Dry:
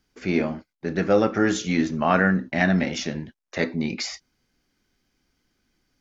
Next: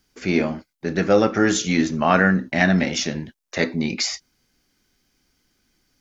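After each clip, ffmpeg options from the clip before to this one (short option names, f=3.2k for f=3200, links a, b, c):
-af "highshelf=f=4.6k:g=8,volume=2.5dB"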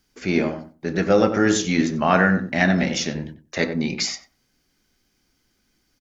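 -filter_complex "[0:a]asplit=2[a][b];[b]adelay=93,lowpass=f=950:p=1,volume=-6.5dB,asplit=2[c][d];[d]adelay=93,lowpass=f=950:p=1,volume=0.19,asplit=2[e][f];[f]adelay=93,lowpass=f=950:p=1,volume=0.19[g];[a][c][e][g]amix=inputs=4:normalize=0,volume=-1dB"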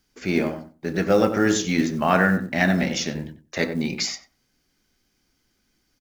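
-af "acrusher=bits=8:mode=log:mix=0:aa=0.000001,volume=-1.5dB"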